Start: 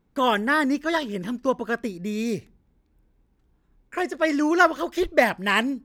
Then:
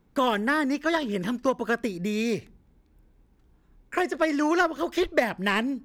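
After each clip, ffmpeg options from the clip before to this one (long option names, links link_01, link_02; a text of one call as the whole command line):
ffmpeg -i in.wav -filter_complex "[0:a]aeval=exprs='0.708*(cos(1*acos(clip(val(0)/0.708,-1,1)))-cos(1*PI/2))+0.0251*(cos(7*acos(clip(val(0)/0.708,-1,1)))-cos(7*PI/2))':channel_layout=same,acrossover=split=480|4700[link_01][link_02][link_03];[link_01]acompressor=threshold=-34dB:ratio=4[link_04];[link_02]acompressor=threshold=-31dB:ratio=4[link_05];[link_03]acompressor=threshold=-54dB:ratio=4[link_06];[link_04][link_05][link_06]amix=inputs=3:normalize=0,volume=6.5dB" out.wav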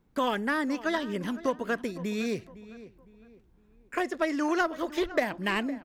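ffmpeg -i in.wav -filter_complex "[0:a]asplit=2[link_01][link_02];[link_02]adelay=509,lowpass=frequency=2500:poles=1,volume=-16dB,asplit=2[link_03][link_04];[link_04]adelay=509,lowpass=frequency=2500:poles=1,volume=0.37,asplit=2[link_05][link_06];[link_06]adelay=509,lowpass=frequency=2500:poles=1,volume=0.37[link_07];[link_01][link_03][link_05][link_07]amix=inputs=4:normalize=0,volume=-4dB" out.wav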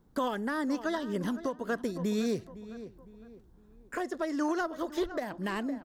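ffmpeg -i in.wav -af "equalizer=frequency=2400:width_type=o:width=0.65:gain=-11,alimiter=level_in=1.5dB:limit=-24dB:level=0:latency=1:release=472,volume=-1.5dB,volume=3.5dB" out.wav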